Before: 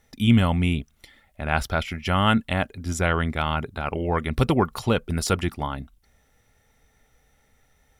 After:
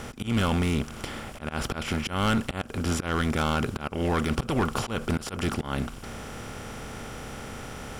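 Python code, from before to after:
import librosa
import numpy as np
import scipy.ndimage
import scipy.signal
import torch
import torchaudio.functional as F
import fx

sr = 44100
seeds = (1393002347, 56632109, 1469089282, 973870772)

y = fx.bin_compress(x, sr, power=0.4)
y = fx.auto_swell(y, sr, attack_ms=173.0)
y = np.clip(10.0 ** (12.5 / 20.0) * y, -1.0, 1.0) / 10.0 ** (12.5 / 20.0)
y = y * librosa.db_to_amplitude(-6.0)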